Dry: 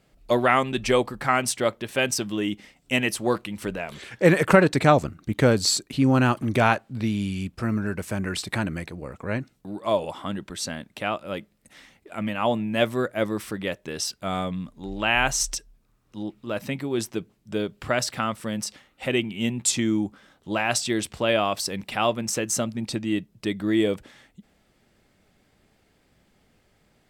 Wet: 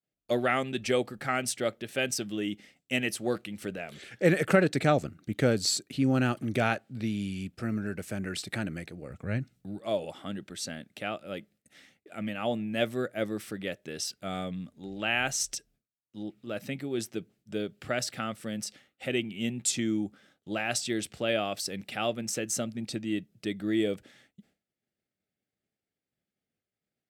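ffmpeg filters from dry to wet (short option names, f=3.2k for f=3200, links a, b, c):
-filter_complex "[0:a]asplit=3[a][b][c];[a]afade=t=out:st=9.09:d=0.02[d];[b]asubboost=boost=3:cutoff=180,afade=t=in:st=9.09:d=0.02,afade=t=out:st=9.8:d=0.02[e];[c]afade=t=in:st=9.8:d=0.02[f];[d][e][f]amix=inputs=3:normalize=0,highpass=96,agate=range=-33dB:threshold=-51dB:ratio=3:detection=peak,equalizer=f=1k:w=4.4:g=-15,volume=-5.5dB"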